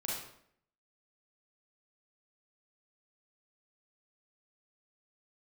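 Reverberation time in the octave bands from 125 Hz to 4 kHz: 0.70 s, 0.75 s, 0.70 s, 0.65 s, 0.60 s, 0.50 s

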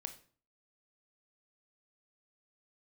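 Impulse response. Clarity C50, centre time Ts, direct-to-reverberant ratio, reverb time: 12.5 dB, 8 ms, 7.5 dB, 0.45 s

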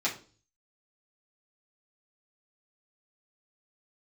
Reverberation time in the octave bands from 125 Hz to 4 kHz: 0.70 s, 0.50 s, 0.45 s, 0.35 s, 0.30 s, 0.35 s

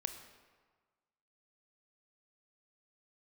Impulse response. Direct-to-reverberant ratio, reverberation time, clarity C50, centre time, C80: 7.5 dB, 1.5 s, 9.0 dB, 20 ms, 10.5 dB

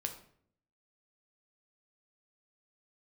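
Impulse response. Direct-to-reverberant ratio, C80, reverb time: 4.5 dB, 13.0 dB, 0.60 s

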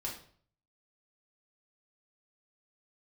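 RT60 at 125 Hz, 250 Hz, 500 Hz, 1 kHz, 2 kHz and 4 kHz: 0.80 s, 0.55 s, 0.55 s, 0.50 s, 0.45 s, 0.45 s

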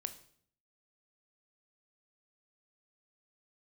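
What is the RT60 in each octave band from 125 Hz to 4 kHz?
0.80 s, 0.75 s, 0.65 s, 0.55 s, 0.55 s, 0.55 s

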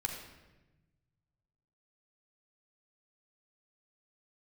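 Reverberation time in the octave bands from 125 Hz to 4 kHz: 2.4 s, 1.6 s, 1.2 s, 1.0 s, 1.0 s, 0.85 s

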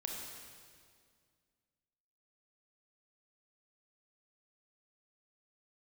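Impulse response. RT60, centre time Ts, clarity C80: 2.0 s, 91 ms, 2.5 dB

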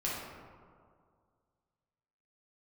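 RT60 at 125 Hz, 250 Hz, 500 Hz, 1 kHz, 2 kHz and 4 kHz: 2.3 s, 2.1 s, 2.1 s, 2.0 s, 1.4 s, 0.80 s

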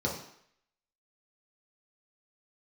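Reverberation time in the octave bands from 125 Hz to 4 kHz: 0.50 s, 0.60 s, 0.65 s, 0.70 s, 0.75 s, 0.65 s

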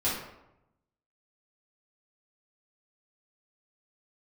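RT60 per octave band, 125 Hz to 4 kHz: 1.2 s, 0.95 s, 0.90 s, 0.85 s, 0.70 s, 0.50 s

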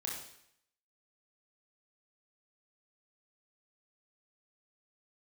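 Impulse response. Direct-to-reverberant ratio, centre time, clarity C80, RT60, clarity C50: -3.0 dB, 46 ms, 6.5 dB, 0.70 s, 2.5 dB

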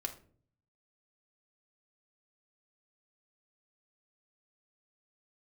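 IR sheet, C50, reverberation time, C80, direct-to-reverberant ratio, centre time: 12.0 dB, 0.50 s, 16.5 dB, 3.0 dB, 10 ms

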